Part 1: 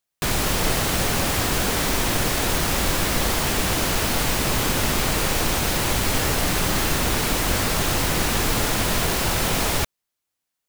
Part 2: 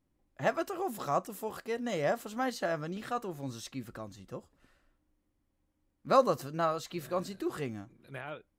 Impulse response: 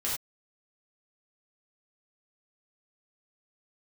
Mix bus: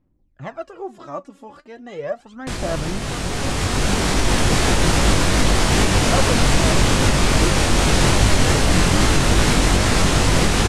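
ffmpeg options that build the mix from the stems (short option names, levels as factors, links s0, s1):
-filter_complex "[0:a]alimiter=limit=0.2:level=0:latency=1:release=251,dynaudnorm=f=230:g=13:m=4.47,flanger=delay=19:depth=4:speed=2.5,adelay=2250,volume=0.841[s0];[1:a]aemphasis=mode=reproduction:type=50fm,aphaser=in_gain=1:out_gain=1:delay=3.6:decay=0.69:speed=0.36:type=sinusoidal,volume=0.708[s1];[s0][s1]amix=inputs=2:normalize=0,lowpass=f=9500:w=0.5412,lowpass=f=9500:w=1.3066,lowshelf=f=320:g=5.5"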